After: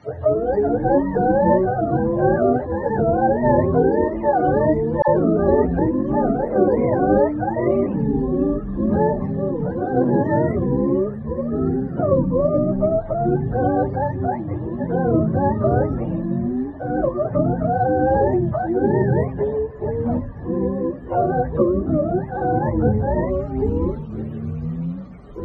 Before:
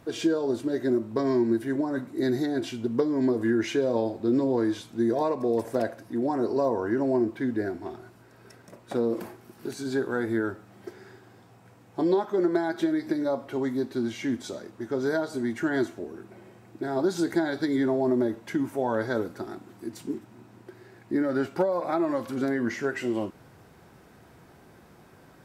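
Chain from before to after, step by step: spectrum mirrored in octaves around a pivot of 450 Hz; echoes that change speed 0.185 s, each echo -7 st, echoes 3; 5.02–5.79 dispersion lows, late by 56 ms, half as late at 910 Hz; gain +7.5 dB

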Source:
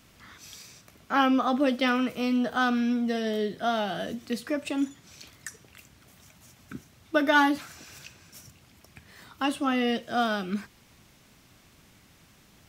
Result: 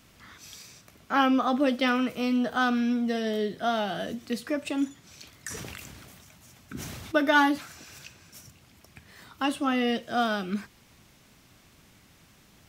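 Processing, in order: 5.35–7.18 sustainer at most 23 dB/s

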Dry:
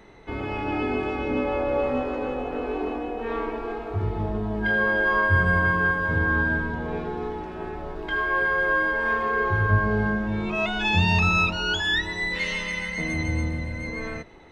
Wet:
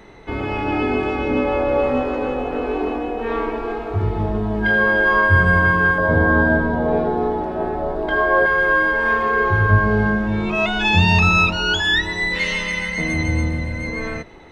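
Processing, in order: 5.98–8.46 fifteen-band EQ 250 Hz +5 dB, 630 Hz +12 dB, 2500 Hz -7 dB, 6300 Hz -6 dB; gain +6 dB

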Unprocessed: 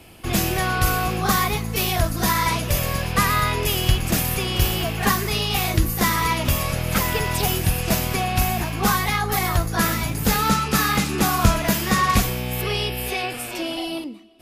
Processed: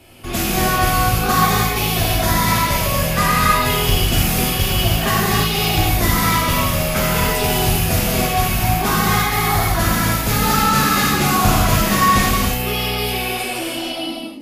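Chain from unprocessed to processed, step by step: non-linear reverb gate 0.36 s flat, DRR -6.5 dB; gain -2.5 dB

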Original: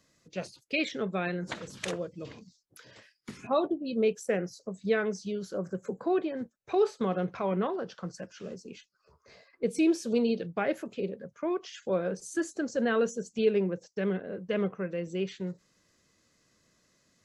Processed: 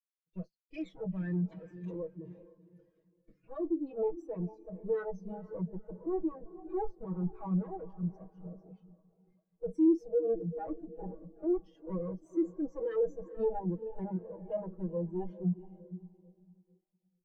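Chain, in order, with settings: minimum comb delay 6.2 ms; 2.06–3.6 compressor 2.5:1, threshold -38 dBFS, peak gain reduction 10.5 dB; 10.06–11.34 high shelf 2100 Hz -7 dB; limiter -24.5 dBFS, peak gain reduction 8.5 dB; diffused feedback echo 0.455 s, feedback 57%, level -9 dB; sample leveller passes 3; notches 50/100/150/200 Hz; spectral expander 2.5:1; gain +2 dB

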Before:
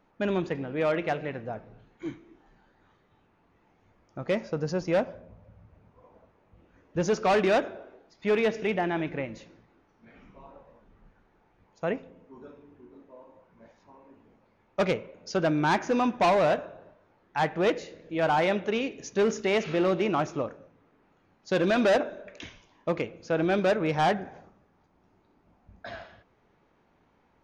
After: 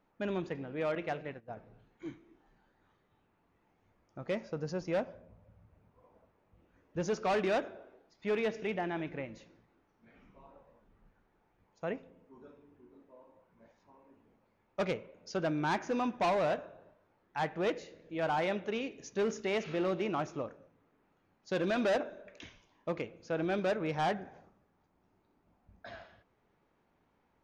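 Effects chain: 0.95–1.57 gate -34 dBFS, range -17 dB; gain -7.5 dB

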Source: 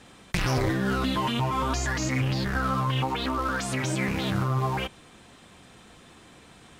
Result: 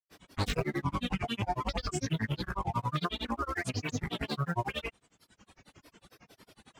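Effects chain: grains, grains 11/s, pitch spread up and down by 7 st; reverb removal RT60 1.4 s; gain -1.5 dB

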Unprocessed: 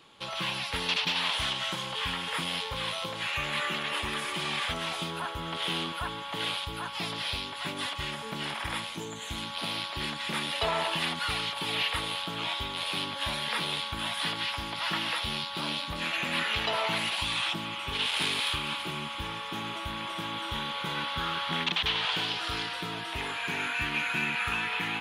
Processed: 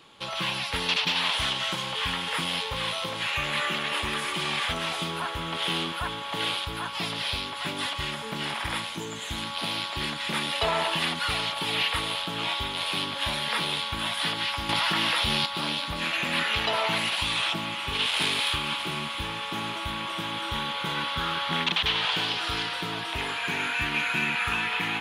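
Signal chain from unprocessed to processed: thinning echo 0.71 s, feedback 73%, level -14.5 dB; 14.69–15.46 fast leveller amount 100%; gain +3 dB

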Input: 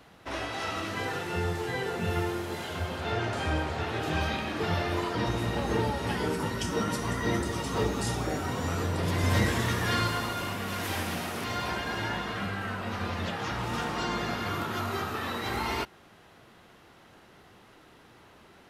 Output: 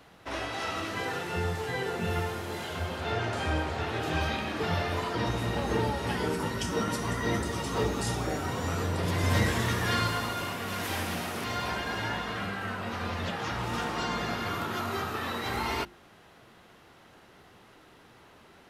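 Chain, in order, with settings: notches 50/100/150/200/250/300/350 Hz

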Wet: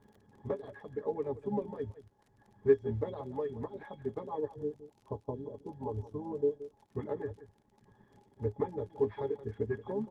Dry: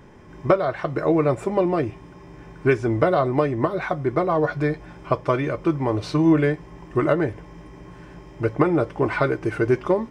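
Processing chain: reverb removal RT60 1.4 s; dynamic EQ 1400 Hz, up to -3 dB, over -37 dBFS, Q 0.87; spectral delete 4.48–6.75, 1100–5300 Hz; low shelf 130 Hz -11.5 dB; in parallel at -10.5 dB: bit-crush 7-bit; on the sum: octave resonator G#, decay 0.11 s; harmoniser -7 st -12 dB; crackle 31/s -49 dBFS; on a send: echo 0.174 s -15 dB; on the sum: gain -2 dB; Opus 16 kbps 48000 Hz

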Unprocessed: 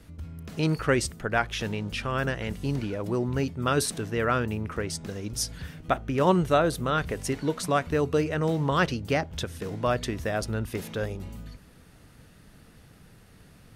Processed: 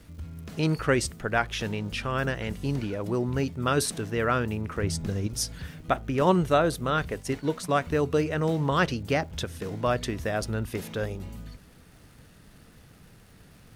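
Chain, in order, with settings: 4.82–5.27 low shelf 200 Hz +11.5 dB; 6.21–7.79 expander -28 dBFS; crackle 480/s -51 dBFS

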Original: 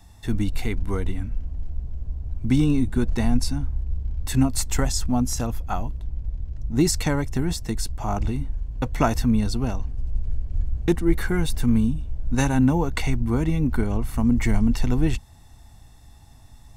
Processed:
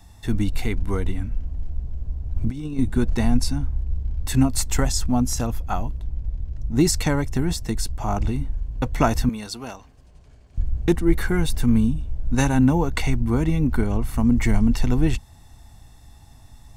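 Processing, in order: 2.36–2.79 negative-ratio compressor -24 dBFS, ratio -0.5; 9.29–10.58 HPF 850 Hz 6 dB/oct; gain +1.5 dB

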